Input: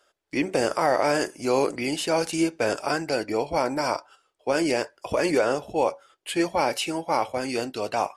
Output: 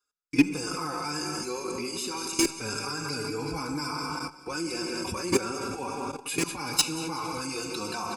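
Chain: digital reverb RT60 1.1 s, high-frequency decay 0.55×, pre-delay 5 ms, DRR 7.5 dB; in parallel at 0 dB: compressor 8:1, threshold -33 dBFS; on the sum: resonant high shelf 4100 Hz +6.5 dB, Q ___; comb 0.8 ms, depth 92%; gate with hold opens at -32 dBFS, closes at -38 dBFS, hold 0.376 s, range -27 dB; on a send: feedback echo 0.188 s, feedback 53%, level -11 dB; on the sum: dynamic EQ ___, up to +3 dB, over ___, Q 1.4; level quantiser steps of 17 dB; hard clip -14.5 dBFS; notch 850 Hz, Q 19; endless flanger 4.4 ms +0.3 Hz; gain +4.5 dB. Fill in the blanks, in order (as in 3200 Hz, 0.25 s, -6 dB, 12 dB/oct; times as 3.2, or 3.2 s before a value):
1.5, 110 Hz, -43 dBFS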